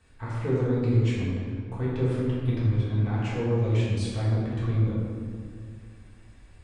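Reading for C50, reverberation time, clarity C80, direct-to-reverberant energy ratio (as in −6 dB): −2.0 dB, 2.1 s, 0.0 dB, −8.5 dB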